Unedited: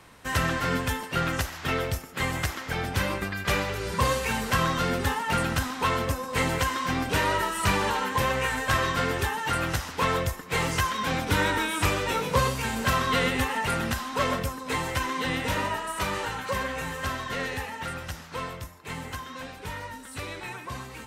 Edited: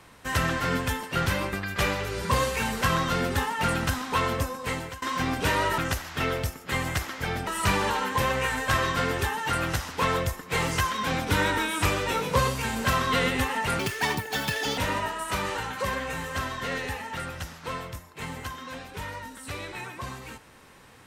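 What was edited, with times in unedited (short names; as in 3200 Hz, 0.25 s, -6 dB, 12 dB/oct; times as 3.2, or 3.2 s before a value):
1.26–2.95 move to 7.47
6.14–6.71 fade out, to -21.5 dB
13.79–15.46 speed 169%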